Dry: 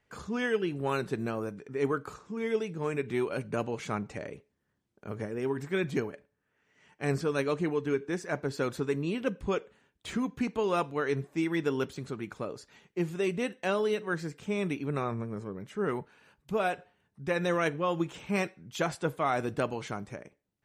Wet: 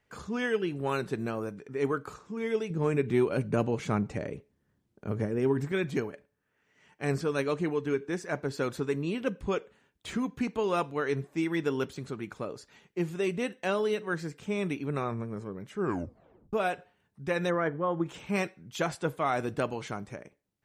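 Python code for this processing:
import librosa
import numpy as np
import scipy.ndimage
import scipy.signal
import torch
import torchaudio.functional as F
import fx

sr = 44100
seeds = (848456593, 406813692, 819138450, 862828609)

y = fx.low_shelf(x, sr, hz=460.0, db=8.0, at=(2.7, 5.72))
y = fx.savgol(y, sr, points=41, at=(17.49, 18.05), fade=0.02)
y = fx.edit(y, sr, fx.tape_stop(start_s=15.78, length_s=0.75), tone=tone)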